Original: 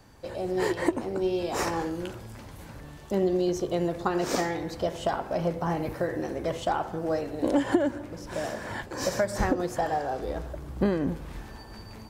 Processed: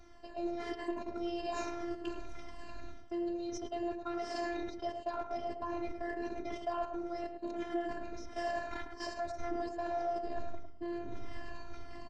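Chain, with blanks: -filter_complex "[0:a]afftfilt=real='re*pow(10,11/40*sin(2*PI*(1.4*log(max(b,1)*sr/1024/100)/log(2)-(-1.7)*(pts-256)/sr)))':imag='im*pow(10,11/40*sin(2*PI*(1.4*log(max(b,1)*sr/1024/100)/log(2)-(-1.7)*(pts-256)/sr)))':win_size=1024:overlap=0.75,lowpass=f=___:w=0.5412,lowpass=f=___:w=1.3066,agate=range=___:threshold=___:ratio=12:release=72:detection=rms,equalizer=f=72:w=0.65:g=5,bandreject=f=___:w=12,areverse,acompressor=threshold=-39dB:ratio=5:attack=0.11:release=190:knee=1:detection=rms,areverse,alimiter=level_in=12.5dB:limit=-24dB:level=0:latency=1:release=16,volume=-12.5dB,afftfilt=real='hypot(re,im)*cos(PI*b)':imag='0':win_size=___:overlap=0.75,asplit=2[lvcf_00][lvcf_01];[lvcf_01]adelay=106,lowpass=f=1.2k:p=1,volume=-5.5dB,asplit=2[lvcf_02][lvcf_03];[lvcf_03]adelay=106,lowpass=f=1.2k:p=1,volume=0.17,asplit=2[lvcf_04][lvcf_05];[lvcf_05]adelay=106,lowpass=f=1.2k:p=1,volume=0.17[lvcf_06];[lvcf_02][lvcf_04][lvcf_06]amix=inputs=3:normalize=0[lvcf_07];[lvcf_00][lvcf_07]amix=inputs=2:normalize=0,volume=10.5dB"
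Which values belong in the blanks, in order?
6k, 6k, -11dB, -31dB, 3.5k, 512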